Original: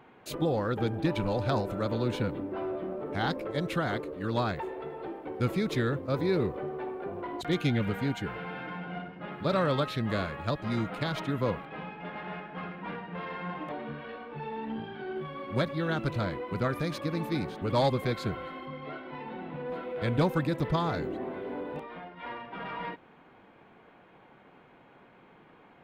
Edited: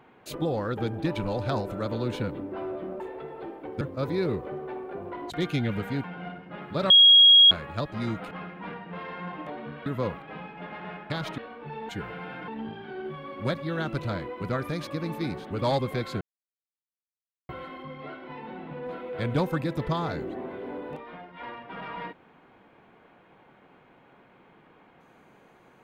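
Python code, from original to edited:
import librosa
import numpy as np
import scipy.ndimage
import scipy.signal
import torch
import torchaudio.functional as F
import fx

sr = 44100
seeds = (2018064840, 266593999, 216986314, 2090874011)

y = fx.edit(x, sr, fx.cut(start_s=3.0, length_s=1.62),
    fx.cut(start_s=5.43, length_s=0.49),
    fx.move(start_s=8.15, length_s=0.59, to_s=14.59),
    fx.bleep(start_s=9.6, length_s=0.61, hz=3290.0, db=-11.0),
    fx.swap(start_s=11.01, length_s=0.28, other_s=12.53, other_length_s=1.55),
    fx.insert_silence(at_s=18.32, length_s=1.28), tone=tone)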